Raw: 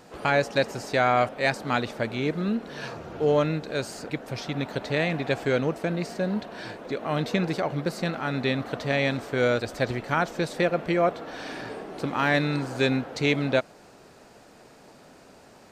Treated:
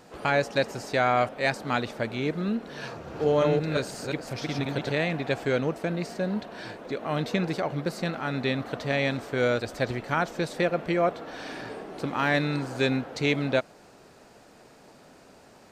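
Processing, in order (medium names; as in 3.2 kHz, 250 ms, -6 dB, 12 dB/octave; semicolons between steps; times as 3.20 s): 2.89–4.92 s: chunks repeated in reverse 176 ms, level -2 dB; trim -1.5 dB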